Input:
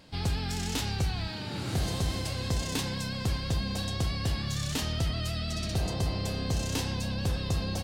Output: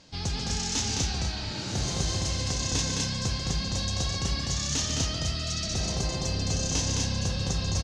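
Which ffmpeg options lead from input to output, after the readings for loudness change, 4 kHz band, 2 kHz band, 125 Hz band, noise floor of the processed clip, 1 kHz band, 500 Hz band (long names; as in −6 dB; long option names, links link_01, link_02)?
+3.0 dB, +5.5 dB, +1.5 dB, +0.5 dB, −34 dBFS, +1.0 dB, +0.5 dB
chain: -af "lowpass=frequency=6300:width_type=q:width=4.3,aecho=1:1:139.9|212.8|244.9:0.398|0.631|0.501,volume=-2dB"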